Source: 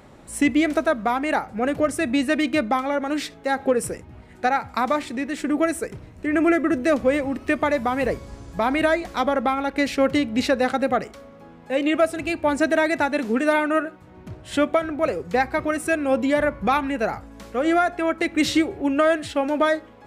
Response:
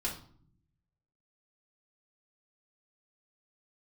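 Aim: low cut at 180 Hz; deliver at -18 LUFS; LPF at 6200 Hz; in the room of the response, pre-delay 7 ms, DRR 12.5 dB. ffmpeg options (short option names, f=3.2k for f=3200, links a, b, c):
-filter_complex "[0:a]highpass=180,lowpass=6.2k,asplit=2[a][b];[1:a]atrim=start_sample=2205,adelay=7[c];[b][c]afir=irnorm=-1:irlink=0,volume=-15.5dB[d];[a][d]amix=inputs=2:normalize=0,volume=4.5dB"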